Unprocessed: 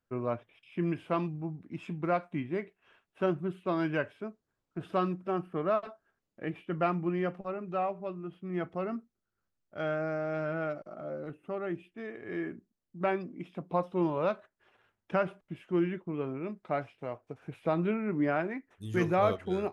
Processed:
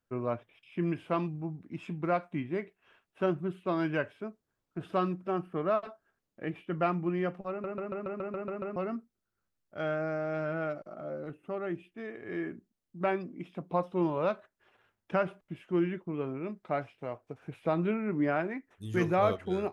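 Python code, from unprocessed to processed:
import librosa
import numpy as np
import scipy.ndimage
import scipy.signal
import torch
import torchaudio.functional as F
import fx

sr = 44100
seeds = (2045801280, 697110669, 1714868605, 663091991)

y = fx.edit(x, sr, fx.stutter_over(start_s=7.5, slice_s=0.14, count=9), tone=tone)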